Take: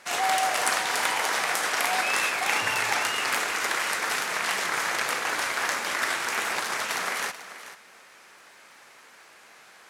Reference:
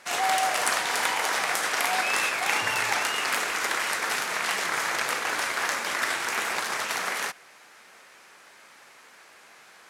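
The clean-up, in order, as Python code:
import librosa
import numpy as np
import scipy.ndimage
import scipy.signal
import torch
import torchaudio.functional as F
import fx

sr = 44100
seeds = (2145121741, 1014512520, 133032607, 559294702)

y = fx.fix_declick_ar(x, sr, threshold=6.5)
y = fx.fix_echo_inverse(y, sr, delay_ms=437, level_db=-13.5)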